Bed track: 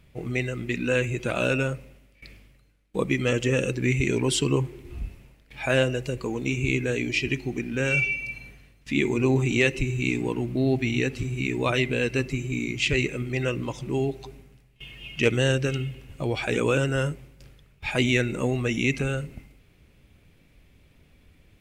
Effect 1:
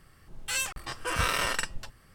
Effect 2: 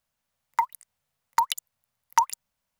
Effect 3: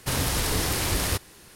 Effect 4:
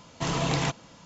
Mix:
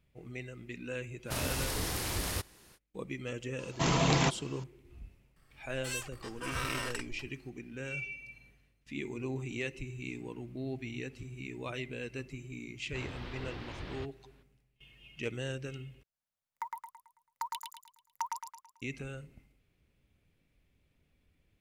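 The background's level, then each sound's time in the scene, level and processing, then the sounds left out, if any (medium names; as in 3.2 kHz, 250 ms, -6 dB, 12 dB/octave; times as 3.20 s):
bed track -15.5 dB
1.24 s: add 3 -9 dB, fades 0.05 s
3.59 s: add 4 -0.5 dB
5.36 s: add 1 -7.5 dB + harmonic-percussive split percussive -4 dB
12.88 s: add 3 -16.5 dB + low-pass 3.6 kHz 24 dB/octave
16.03 s: replace with 2 -16 dB + feedback delay 110 ms, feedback 43%, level -3 dB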